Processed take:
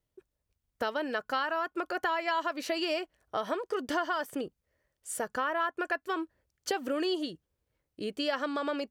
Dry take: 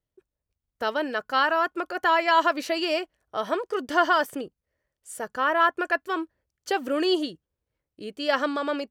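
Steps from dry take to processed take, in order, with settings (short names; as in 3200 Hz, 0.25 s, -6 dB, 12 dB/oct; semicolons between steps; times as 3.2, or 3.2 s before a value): compressor 4:1, threshold -32 dBFS, peak gain reduction 14.5 dB; gain +2.5 dB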